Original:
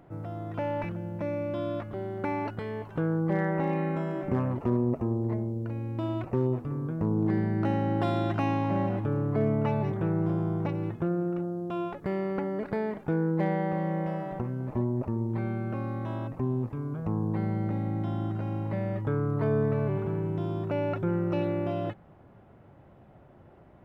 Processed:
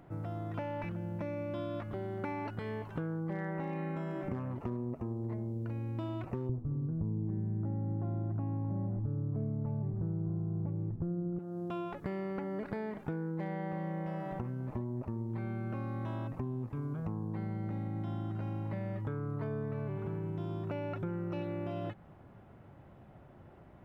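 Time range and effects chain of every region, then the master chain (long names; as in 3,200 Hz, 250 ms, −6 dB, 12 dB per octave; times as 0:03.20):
0:06.49–0:11.39: low-pass filter 1,300 Hz + spectral tilt −4.5 dB per octave
whole clip: parametric band 500 Hz −3 dB 1.6 octaves; downward compressor, threshold −34 dBFS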